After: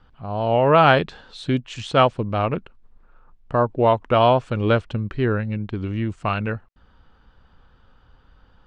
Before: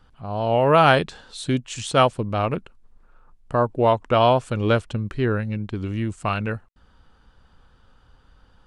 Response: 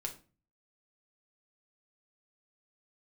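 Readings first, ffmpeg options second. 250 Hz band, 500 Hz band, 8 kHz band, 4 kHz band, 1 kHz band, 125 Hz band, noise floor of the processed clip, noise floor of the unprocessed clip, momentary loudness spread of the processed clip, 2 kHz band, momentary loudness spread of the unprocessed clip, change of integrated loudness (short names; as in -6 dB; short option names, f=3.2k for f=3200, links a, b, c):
+1.0 dB, +1.0 dB, under -10 dB, -0.5 dB, +1.0 dB, +1.0 dB, -56 dBFS, -57 dBFS, 12 LU, +1.0 dB, 12 LU, +1.0 dB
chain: -af "lowpass=4k,volume=1dB"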